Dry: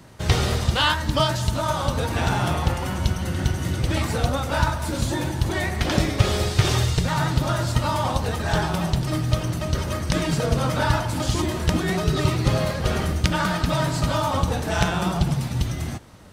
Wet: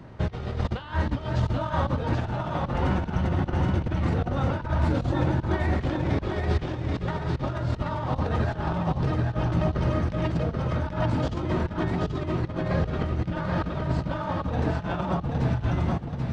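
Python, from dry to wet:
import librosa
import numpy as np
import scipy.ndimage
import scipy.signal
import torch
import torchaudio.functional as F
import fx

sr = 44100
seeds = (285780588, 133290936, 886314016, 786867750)

y = fx.over_compress(x, sr, threshold_db=-26.0, ratio=-0.5)
y = fx.spacing_loss(y, sr, db_at_10k=32)
y = fx.echo_feedback(y, sr, ms=782, feedback_pct=31, wet_db=-4)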